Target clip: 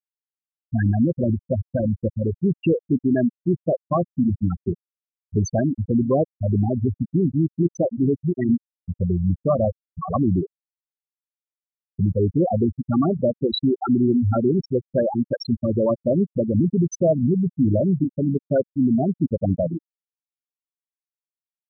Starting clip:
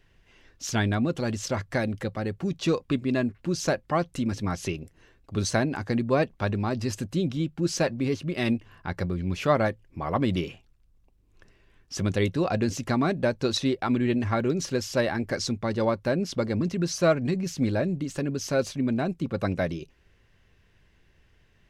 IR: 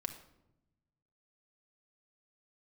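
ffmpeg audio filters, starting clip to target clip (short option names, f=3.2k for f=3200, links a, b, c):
-filter_complex "[0:a]asplit=2[a][b];[b]aeval=exprs='0.376*sin(PI/2*2.51*val(0)/0.376)':c=same,volume=-11dB[c];[a][c]amix=inputs=2:normalize=0,alimiter=limit=-14dB:level=0:latency=1:release=98,asplit=2[d][e];[e]adelay=422,lowpass=f=2k:p=1,volume=-15dB,asplit=2[f][g];[g]adelay=422,lowpass=f=2k:p=1,volume=0.36,asplit=2[h][i];[i]adelay=422,lowpass=f=2k:p=1,volume=0.36[j];[d][f][h][j]amix=inputs=4:normalize=0,afftfilt=real='re*gte(hypot(re,im),0.355)':imag='im*gte(hypot(re,im),0.355)':win_size=1024:overlap=0.75,volume=3dB"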